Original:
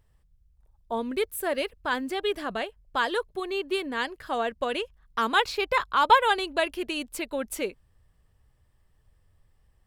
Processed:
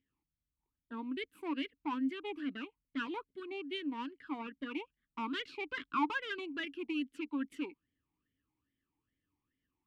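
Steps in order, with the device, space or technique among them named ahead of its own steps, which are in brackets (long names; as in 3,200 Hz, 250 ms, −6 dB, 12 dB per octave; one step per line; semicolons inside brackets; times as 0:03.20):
talk box (tube saturation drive 23 dB, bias 0.75; formant filter swept between two vowels i-u 2.4 Hz)
level +6 dB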